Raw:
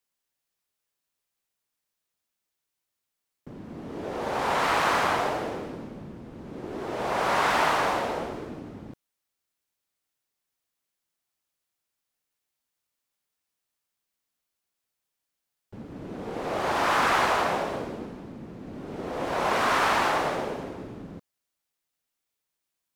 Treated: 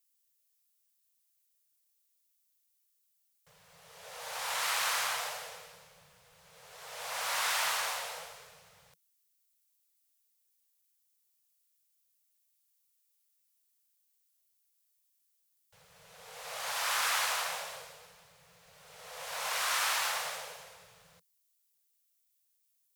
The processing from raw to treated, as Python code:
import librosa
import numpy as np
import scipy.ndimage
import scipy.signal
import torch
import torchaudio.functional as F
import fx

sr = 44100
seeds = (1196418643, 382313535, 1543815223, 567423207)

y = scipy.signal.sosfilt(scipy.signal.ellip(3, 1.0, 40, [170.0, 470.0], 'bandstop', fs=sr, output='sos'), x)
y = scipy.signal.lfilter([1.0, -0.97], [1.0], y)
y = F.gain(torch.from_numpy(y), 5.5).numpy()